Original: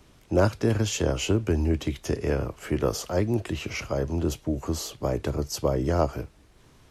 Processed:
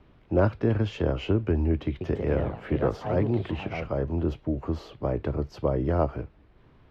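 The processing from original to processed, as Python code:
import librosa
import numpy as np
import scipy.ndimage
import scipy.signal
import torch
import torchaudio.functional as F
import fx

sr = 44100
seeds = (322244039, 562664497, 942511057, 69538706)

y = fx.echo_pitch(x, sr, ms=138, semitones=3, count=3, db_per_echo=-6.0, at=(1.87, 4.1))
y = fx.air_absorb(y, sr, metres=390.0)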